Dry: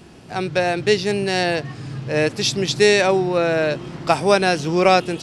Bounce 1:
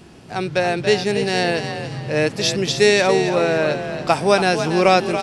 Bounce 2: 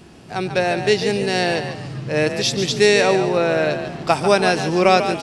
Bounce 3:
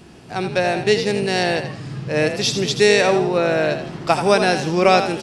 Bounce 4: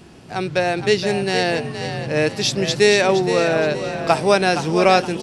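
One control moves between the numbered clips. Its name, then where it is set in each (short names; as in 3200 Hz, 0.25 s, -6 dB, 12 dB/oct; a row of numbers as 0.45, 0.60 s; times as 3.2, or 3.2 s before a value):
frequency-shifting echo, time: 281, 143, 82, 468 ms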